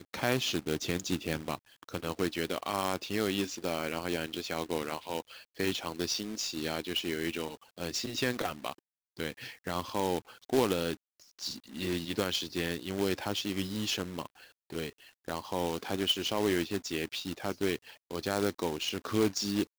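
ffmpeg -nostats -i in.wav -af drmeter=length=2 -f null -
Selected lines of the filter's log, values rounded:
Channel 1: DR: 15.7
Overall DR: 15.7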